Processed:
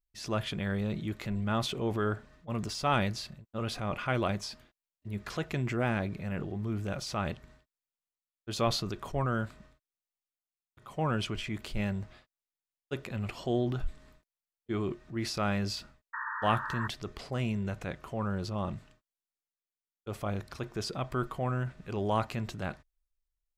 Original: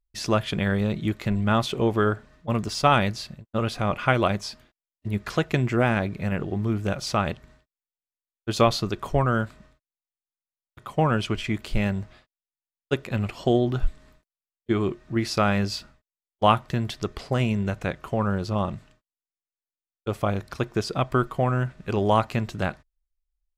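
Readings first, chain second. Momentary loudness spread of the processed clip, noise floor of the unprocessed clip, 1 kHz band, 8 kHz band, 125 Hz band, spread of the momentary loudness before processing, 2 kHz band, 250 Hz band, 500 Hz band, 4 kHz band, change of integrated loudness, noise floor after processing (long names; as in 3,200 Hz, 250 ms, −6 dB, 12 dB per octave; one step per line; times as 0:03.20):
10 LU, below −85 dBFS, −9.0 dB, −5.5 dB, −8.0 dB, 10 LU, −7.5 dB, −8.5 dB, −9.5 dB, −6.0 dB, −8.5 dB, below −85 dBFS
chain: transient designer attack −4 dB, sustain +5 dB
sound drawn into the spectrogram noise, 0:16.13–0:16.88, 860–1,900 Hz −29 dBFS
level −8 dB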